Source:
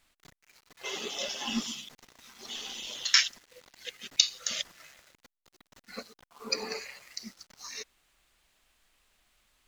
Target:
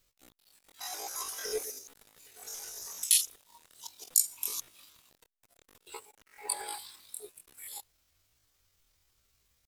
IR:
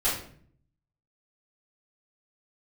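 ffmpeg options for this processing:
-af "lowshelf=f=380:g=3,crystalizer=i=1:c=0,asetrate=83250,aresample=44100,atempo=0.529732,volume=0.596"

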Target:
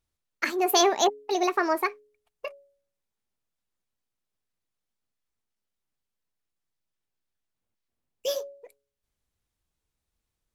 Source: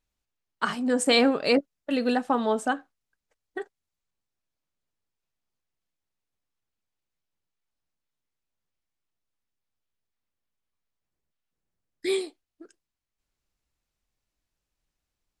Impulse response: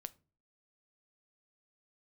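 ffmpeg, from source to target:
-af "asetrate=64386,aresample=44100,bandreject=f=140.4:t=h:w=4,bandreject=f=280.8:t=h:w=4,bandreject=f=421.2:t=h:w=4,bandreject=f=561.6:t=h:w=4"

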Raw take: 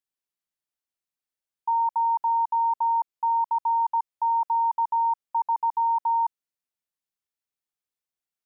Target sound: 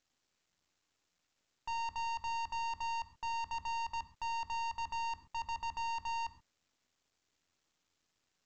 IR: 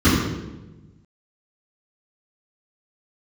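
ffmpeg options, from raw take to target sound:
-filter_complex "[0:a]aeval=exprs='(tanh(63.1*val(0)+0.45)-tanh(0.45))/63.1':c=same,asplit=2[s0][s1];[1:a]atrim=start_sample=2205,atrim=end_sample=6174[s2];[s1][s2]afir=irnorm=-1:irlink=0,volume=0.0299[s3];[s0][s3]amix=inputs=2:normalize=0,volume=0.841" -ar 16000 -c:a pcm_mulaw

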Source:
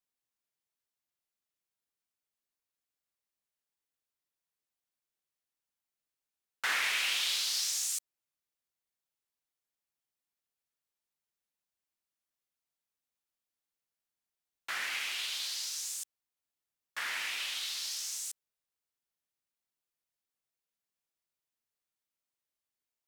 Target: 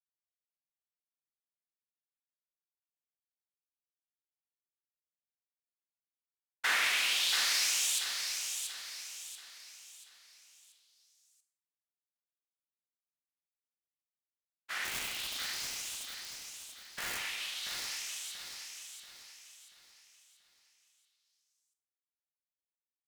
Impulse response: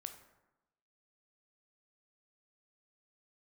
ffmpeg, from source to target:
-filter_complex "[0:a]agate=range=0.0224:threshold=0.0251:ratio=3:detection=peak,asplit=3[s0][s1][s2];[s0]afade=t=out:st=14.84:d=0.02[s3];[s1]aeval=exprs='(mod(42.2*val(0)+1,2)-1)/42.2':c=same,afade=t=in:st=14.84:d=0.02,afade=t=out:st=17.17:d=0.02[s4];[s2]afade=t=in:st=17.17:d=0.02[s5];[s3][s4][s5]amix=inputs=3:normalize=0,adynamicequalizer=threshold=0.00562:dfrequency=1500:dqfactor=0.84:tfrequency=1500:tqfactor=0.84:attack=5:release=100:ratio=0.375:range=2.5:mode=cutabove:tftype=bell,aecho=1:1:684|1368|2052|2736|3420:0.501|0.2|0.0802|0.0321|0.0128[s6];[1:a]atrim=start_sample=2205[s7];[s6][s7]afir=irnorm=-1:irlink=0,volume=2.11"

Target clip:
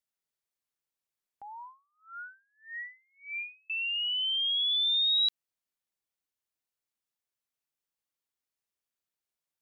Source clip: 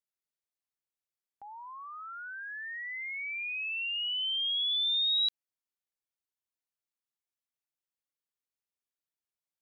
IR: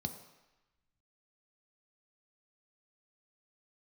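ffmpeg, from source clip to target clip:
-filter_complex "[0:a]asettb=1/sr,asplit=3[s0][s1][s2];[s0]atrim=end=1.614[s3];[s1]atrim=start=1.61:end=3.7,asetpts=PTS-STARTPTS,afade=t=in:d=0.004:c=qsin,afade=t=out:st=2.086:d=0.004:c=qsin,aeval=exprs='val(0)*pow(10,-39*(0.5-0.5*cos(2*PI*1.7*n/s))/20)':c=same[s4];[s2]atrim=start=3.696[s5];[s3][s4]acrossfade=d=0.004:c1=hsin:c2=qsin[s6];[s6][s5]acrossfade=d=0.004:c1=qsin:c2=hsin,volume=1.26"

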